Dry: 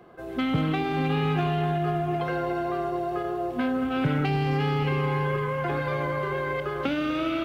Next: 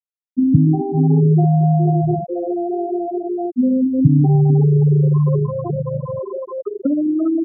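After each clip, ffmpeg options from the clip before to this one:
-af "afftfilt=real='re*gte(hypot(re,im),0.251)':imag='im*gte(hypot(re,im),0.251)':win_size=1024:overlap=0.75,tiltshelf=f=690:g=8.5,volume=2.11"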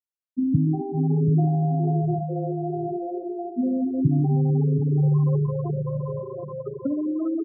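-af "aecho=1:1:732:0.398,volume=0.398"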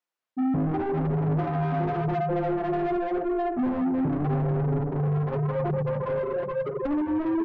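-filter_complex "[0:a]asplit=2[s0][s1];[s1]highpass=f=720:p=1,volume=39.8,asoftclip=type=tanh:threshold=0.355[s2];[s0][s2]amix=inputs=2:normalize=0,lowpass=f=1200:p=1,volume=0.501,flanger=delay=5.5:depth=6.5:regen=-36:speed=0.88:shape=sinusoidal,volume=0.501"

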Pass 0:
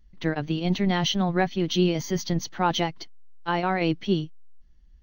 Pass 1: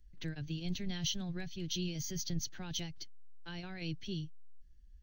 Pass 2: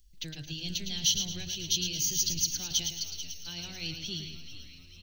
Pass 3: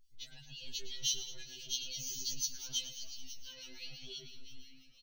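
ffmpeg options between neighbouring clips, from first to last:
-filter_complex "[0:a]equalizer=f=200:t=o:w=0.33:g=-7,equalizer=f=1600:t=o:w=0.33:g=10,equalizer=f=2500:t=o:w=0.33:g=3,equalizer=f=8000:t=o:w=0.33:g=8,acrossover=split=160|3000[s0][s1][s2];[s1]acompressor=threshold=0.01:ratio=3[s3];[s0][s3][s2]amix=inputs=3:normalize=0,equalizer=f=1100:w=0.48:g=-13.5,volume=0.708"
-filter_complex "[0:a]asplit=2[s0][s1];[s1]aecho=0:1:110|220|330|440:0.422|0.156|0.0577|0.0214[s2];[s0][s2]amix=inputs=2:normalize=0,aexciter=amount=2.7:drive=9.4:freq=2600,asplit=2[s3][s4];[s4]asplit=6[s5][s6][s7][s8][s9][s10];[s5]adelay=438,afreqshift=-88,volume=0.251[s11];[s6]adelay=876,afreqshift=-176,volume=0.135[s12];[s7]adelay=1314,afreqshift=-264,volume=0.0733[s13];[s8]adelay=1752,afreqshift=-352,volume=0.0394[s14];[s9]adelay=2190,afreqshift=-440,volume=0.0214[s15];[s10]adelay=2628,afreqshift=-528,volume=0.0115[s16];[s11][s12][s13][s14][s15][s16]amix=inputs=6:normalize=0[s17];[s3][s17]amix=inputs=2:normalize=0,volume=0.708"
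-filter_complex "[0:a]acrossover=split=2000[s0][s1];[s0]aeval=exprs='val(0)*(1-0.7/2+0.7/2*cos(2*PI*5.9*n/s))':c=same[s2];[s1]aeval=exprs='val(0)*(1-0.7/2-0.7/2*cos(2*PI*5.9*n/s))':c=same[s3];[s2][s3]amix=inputs=2:normalize=0,asplit=2[s4][s5];[s5]adelay=12,volume=0.237[s6];[s4][s6]amix=inputs=2:normalize=0,afftfilt=real='re*2.45*eq(mod(b,6),0)':imag='im*2.45*eq(mod(b,6),0)':win_size=2048:overlap=0.75,volume=0.631"

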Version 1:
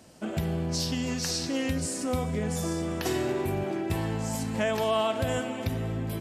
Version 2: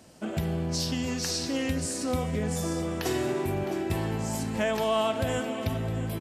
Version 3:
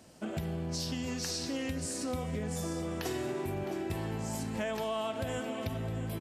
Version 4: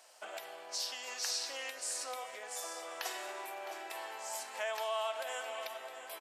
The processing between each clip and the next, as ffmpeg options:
-af "aecho=1:1:661:0.211"
-af "acompressor=threshold=0.0316:ratio=2.5,volume=0.708"
-af "highpass=f=650:w=0.5412,highpass=f=650:w=1.3066,volume=1.12"

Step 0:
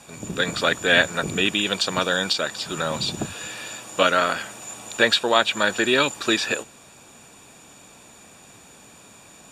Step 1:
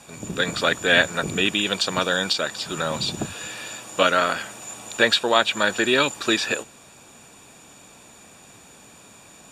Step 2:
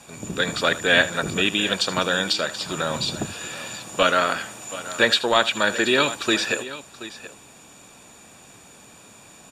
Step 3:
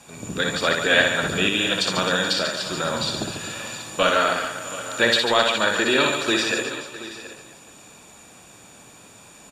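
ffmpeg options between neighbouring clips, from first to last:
-af anull
-filter_complex "[0:a]aecho=1:1:77|728:0.15|0.168,acrossover=split=1100[s0][s1];[s0]aeval=exprs='clip(val(0),-1,0.178)':c=same[s2];[s2][s1]amix=inputs=2:normalize=0"
-af "aecho=1:1:60|144|261.6|426.2|656.7:0.631|0.398|0.251|0.158|0.1,volume=0.841"

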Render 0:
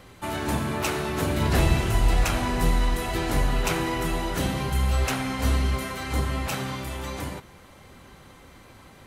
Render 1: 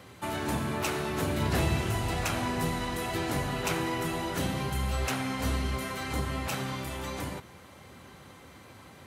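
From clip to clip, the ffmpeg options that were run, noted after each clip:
-filter_complex "[0:a]highpass=f=71:w=0.5412,highpass=f=71:w=1.3066,asplit=2[s0][s1];[s1]acompressor=threshold=0.0224:ratio=6,volume=0.794[s2];[s0][s2]amix=inputs=2:normalize=0,volume=0.501"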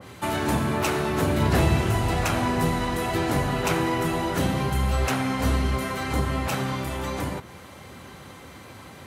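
-af "adynamicequalizer=threshold=0.00398:dfrequency=1900:dqfactor=0.7:tfrequency=1900:tqfactor=0.7:attack=5:release=100:ratio=0.375:range=2:mode=cutabove:tftype=highshelf,volume=2.24"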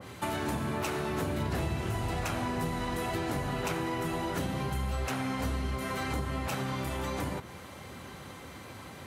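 -af "acompressor=threshold=0.0398:ratio=4,volume=0.794"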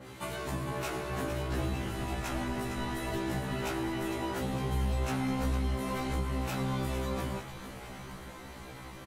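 -filter_complex "[0:a]asplit=9[s0][s1][s2][s3][s4][s5][s6][s7][s8];[s1]adelay=455,afreqshift=-50,volume=0.335[s9];[s2]adelay=910,afreqshift=-100,volume=0.204[s10];[s3]adelay=1365,afreqshift=-150,volume=0.124[s11];[s4]adelay=1820,afreqshift=-200,volume=0.0759[s12];[s5]adelay=2275,afreqshift=-250,volume=0.0462[s13];[s6]adelay=2730,afreqshift=-300,volume=0.0282[s14];[s7]adelay=3185,afreqshift=-350,volume=0.0172[s15];[s8]adelay=3640,afreqshift=-400,volume=0.0105[s16];[s0][s9][s10][s11][s12][s13][s14][s15][s16]amix=inputs=9:normalize=0,afftfilt=real='re*1.73*eq(mod(b,3),0)':imag='im*1.73*eq(mod(b,3),0)':win_size=2048:overlap=0.75"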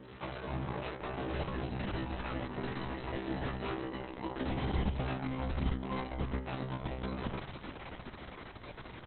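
-ar 48000 -c:a libopus -b:a 6k

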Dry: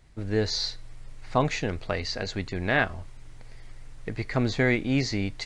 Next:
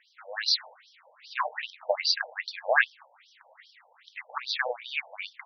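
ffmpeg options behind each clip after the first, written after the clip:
-af "asubboost=boost=9.5:cutoff=110,aeval=exprs='0.473*sin(PI/2*1.78*val(0)/0.473)':c=same,afftfilt=real='re*between(b*sr/1024,650*pow(4400/650,0.5+0.5*sin(2*PI*2.5*pts/sr))/1.41,650*pow(4400/650,0.5+0.5*sin(2*PI*2.5*pts/sr))*1.41)':imag='im*between(b*sr/1024,650*pow(4400/650,0.5+0.5*sin(2*PI*2.5*pts/sr))/1.41,650*pow(4400/650,0.5+0.5*sin(2*PI*2.5*pts/sr))*1.41)':win_size=1024:overlap=0.75"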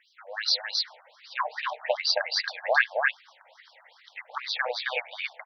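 -af "aecho=1:1:268:0.708"

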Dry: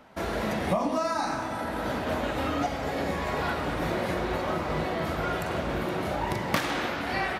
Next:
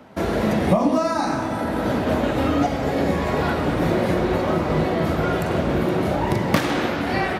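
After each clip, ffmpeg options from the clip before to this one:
-filter_complex "[0:a]highpass=67,acrossover=split=540[s0][s1];[s0]acontrast=80[s2];[s2][s1]amix=inputs=2:normalize=0,volume=1.58"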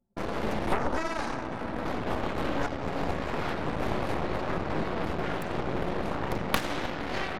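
-af "aeval=exprs='0.891*(cos(1*acos(clip(val(0)/0.891,-1,1)))-cos(1*PI/2))+0.282*(cos(3*acos(clip(val(0)/0.891,-1,1)))-cos(3*PI/2))+0.0562*(cos(7*acos(clip(val(0)/0.891,-1,1)))-cos(7*PI/2))+0.0794*(cos(8*acos(clip(val(0)/0.891,-1,1)))-cos(8*PI/2))':c=same,anlmdn=0.631,volume=0.75"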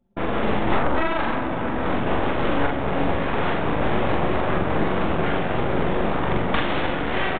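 -filter_complex "[0:a]aresample=8000,asoftclip=type=tanh:threshold=0.0944,aresample=44100,asplit=2[s0][s1];[s1]adelay=43,volume=0.708[s2];[s0][s2]amix=inputs=2:normalize=0,volume=2.51"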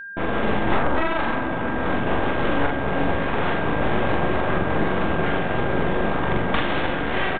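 -af "aeval=exprs='val(0)+0.0224*sin(2*PI*1600*n/s)':c=same"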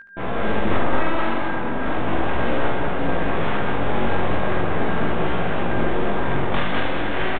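-filter_complex "[0:a]flanger=delay=16.5:depth=4.9:speed=0.38,asplit=2[s0][s1];[s1]aecho=0:1:72.89|204.1:0.562|0.708[s2];[s0][s2]amix=inputs=2:normalize=0"

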